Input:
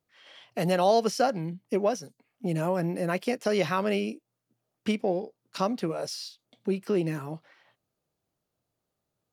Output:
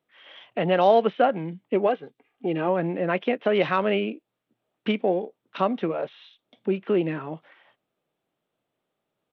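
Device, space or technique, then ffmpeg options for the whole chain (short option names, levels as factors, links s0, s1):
Bluetooth headset: -filter_complex "[0:a]asplit=3[s0][s1][s2];[s0]afade=t=out:st=1.86:d=0.02[s3];[s1]aecho=1:1:2.5:0.55,afade=t=in:st=1.86:d=0.02,afade=t=out:st=2.67:d=0.02[s4];[s2]afade=t=in:st=2.67:d=0.02[s5];[s3][s4][s5]amix=inputs=3:normalize=0,highpass=200,aresample=8000,aresample=44100,volume=1.68" -ar 32000 -c:a sbc -b:a 64k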